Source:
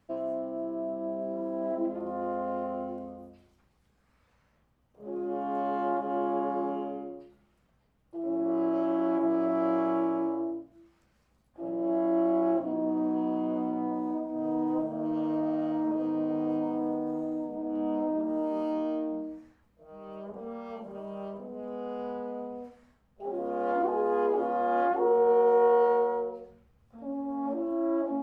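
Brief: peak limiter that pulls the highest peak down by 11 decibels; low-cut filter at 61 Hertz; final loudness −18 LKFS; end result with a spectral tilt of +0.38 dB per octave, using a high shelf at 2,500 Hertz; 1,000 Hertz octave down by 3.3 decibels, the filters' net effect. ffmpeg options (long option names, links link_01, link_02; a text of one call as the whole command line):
ffmpeg -i in.wav -af "highpass=61,equalizer=frequency=1000:width_type=o:gain=-4.5,highshelf=frequency=2500:gain=-4.5,volume=17dB,alimiter=limit=-9.5dB:level=0:latency=1" out.wav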